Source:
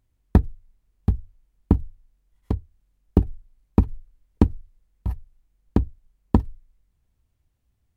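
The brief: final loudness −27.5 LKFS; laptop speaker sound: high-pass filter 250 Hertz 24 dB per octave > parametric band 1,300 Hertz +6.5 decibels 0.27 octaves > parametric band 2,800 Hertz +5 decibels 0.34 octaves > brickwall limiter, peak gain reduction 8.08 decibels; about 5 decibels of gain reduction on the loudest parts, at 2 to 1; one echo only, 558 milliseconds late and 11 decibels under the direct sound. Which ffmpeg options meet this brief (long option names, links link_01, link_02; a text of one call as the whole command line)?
ffmpeg -i in.wav -af "acompressor=threshold=-22dB:ratio=2,highpass=frequency=250:width=0.5412,highpass=frequency=250:width=1.3066,equalizer=frequency=1300:width_type=o:width=0.27:gain=6.5,equalizer=frequency=2800:width_type=o:width=0.34:gain=5,aecho=1:1:558:0.282,volume=15.5dB,alimiter=limit=-4dB:level=0:latency=1" out.wav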